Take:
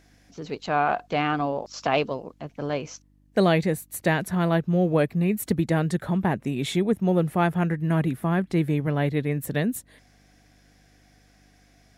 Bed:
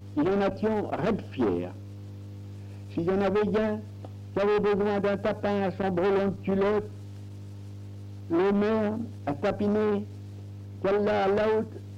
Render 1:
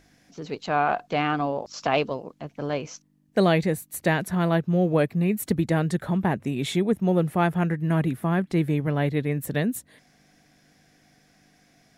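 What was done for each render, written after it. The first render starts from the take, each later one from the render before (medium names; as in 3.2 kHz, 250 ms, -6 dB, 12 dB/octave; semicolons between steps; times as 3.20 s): de-hum 50 Hz, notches 2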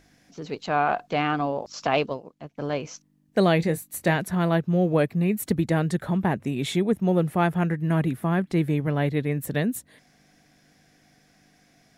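2.06–2.58 s: upward expansion, over -47 dBFS; 3.57–4.16 s: doubling 24 ms -12 dB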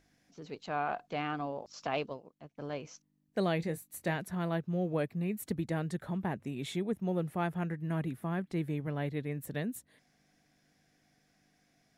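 trim -11 dB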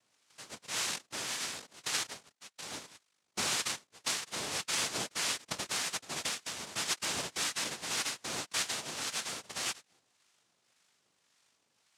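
noise-vocoded speech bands 1; harmonic tremolo 1.8 Hz, depth 50%, crossover 930 Hz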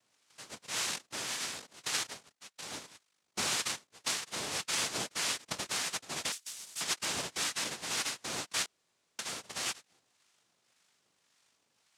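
6.32–6.81 s: pre-emphasis filter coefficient 0.9; 8.66–9.19 s: room tone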